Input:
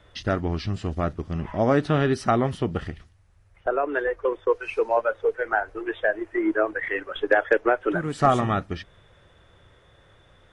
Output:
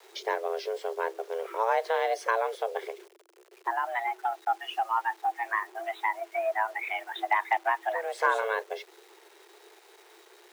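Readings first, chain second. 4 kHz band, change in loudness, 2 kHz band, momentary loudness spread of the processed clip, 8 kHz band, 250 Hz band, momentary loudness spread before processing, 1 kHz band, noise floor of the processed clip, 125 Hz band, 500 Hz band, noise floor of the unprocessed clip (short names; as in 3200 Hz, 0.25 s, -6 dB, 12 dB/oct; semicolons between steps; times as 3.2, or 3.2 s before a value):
-2.5 dB, -5.5 dB, -3.5 dB, 9 LU, n/a, -25.5 dB, 8 LU, 0.0 dB, -58 dBFS, under -40 dB, -8.0 dB, -57 dBFS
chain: in parallel at -1 dB: compressor 6:1, threshold -36 dBFS, peak gain reduction 20.5 dB; on the sum: requantised 8-bit, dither none; frequency shift +330 Hz; gain -7 dB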